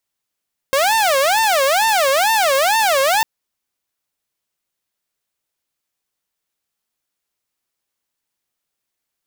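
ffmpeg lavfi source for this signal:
ffmpeg -f lavfi -i "aevalsrc='0.299*(2*mod((718*t-183/(2*PI*2.2)*sin(2*PI*2.2*t)),1)-1)':duration=2.5:sample_rate=44100" out.wav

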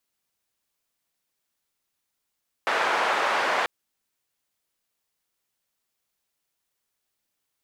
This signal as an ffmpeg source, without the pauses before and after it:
ffmpeg -f lavfi -i "anoisesrc=color=white:duration=0.99:sample_rate=44100:seed=1,highpass=frequency=660,lowpass=frequency=1300,volume=-4.6dB" out.wav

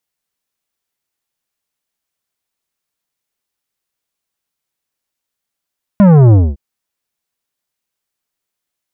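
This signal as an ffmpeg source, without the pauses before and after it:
ffmpeg -f lavfi -i "aevalsrc='0.596*clip((0.56-t)/0.23,0,1)*tanh(3.98*sin(2*PI*210*0.56/log(65/210)*(exp(log(65/210)*t/0.56)-1)))/tanh(3.98)':duration=0.56:sample_rate=44100" out.wav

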